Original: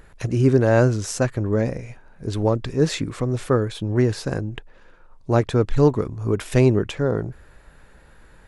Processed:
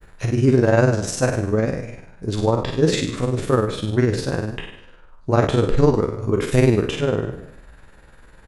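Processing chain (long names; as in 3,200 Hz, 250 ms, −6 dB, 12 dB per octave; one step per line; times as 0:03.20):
peak hold with a decay on every bin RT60 0.72 s
granular cloud 81 ms, spray 10 ms, pitch spread up and down by 0 semitones
echo with shifted repeats 165 ms, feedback 35%, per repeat +65 Hz, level −23 dB
level +2 dB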